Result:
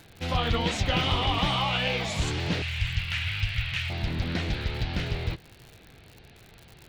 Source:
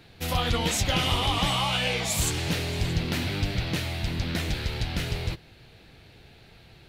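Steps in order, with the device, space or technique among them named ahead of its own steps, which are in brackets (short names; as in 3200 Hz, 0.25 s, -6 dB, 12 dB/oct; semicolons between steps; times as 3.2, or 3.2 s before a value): lo-fi chain (LPF 4100 Hz 12 dB/oct; wow and flutter; crackle 92/s -37 dBFS); 2.62–3.9 EQ curve 110 Hz 0 dB, 230 Hz -27 dB, 360 Hz -28 dB, 1400 Hz -1 dB, 2800 Hz +7 dB, 4200 Hz -2 dB, 7900 Hz +3 dB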